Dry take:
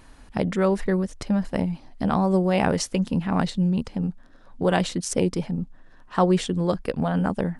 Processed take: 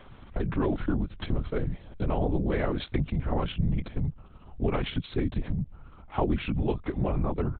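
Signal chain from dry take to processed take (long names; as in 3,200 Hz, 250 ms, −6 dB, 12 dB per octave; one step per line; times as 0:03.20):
downward compressor 3 to 1, threshold −24 dBFS, peak gain reduction 8 dB
pitch shifter −4.5 semitones
linear-prediction vocoder at 8 kHz whisper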